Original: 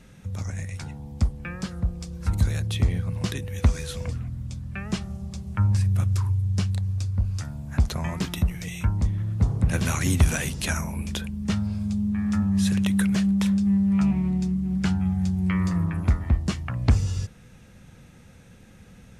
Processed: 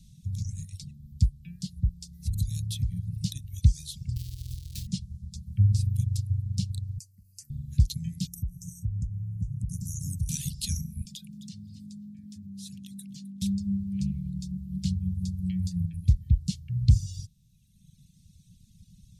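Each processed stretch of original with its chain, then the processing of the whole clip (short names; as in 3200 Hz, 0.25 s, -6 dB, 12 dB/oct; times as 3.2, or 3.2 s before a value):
2.12–3.23 high shelf 9700 Hz +7 dB + compressor 2.5:1, threshold -24 dBFS + buzz 400 Hz, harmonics 5, -51 dBFS -3 dB/oct
4.16–4.87 half-waves squared off + bell 210 Hz -13.5 dB 0.89 oct + notch 1100 Hz, Q 6.7
6.98–7.5 HPF 960 Hz 6 dB/oct + high shelf 10000 Hz +6.5 dB + fixed phaser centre 1500 Hz, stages 4
8.27–10.29 Chebyshev band-stop 320–6000 Hz, order 4 + compressor 3:1, threshold -27 dBFS
11.05–13.42 HPF 130 Hz 24 dB/oct + frequency-shifting echo 0.26 s, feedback 31%, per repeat +50 Hz, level -15 dB + compressor, threshold -30 dBFS
whole clip: reverb removal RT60 1.6 s; elliptic band-stop 170–3900 Hz, stop band 80 dB; dynamic EQ 120 Hz, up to +5 dB, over -42 dBFS, Q 3.4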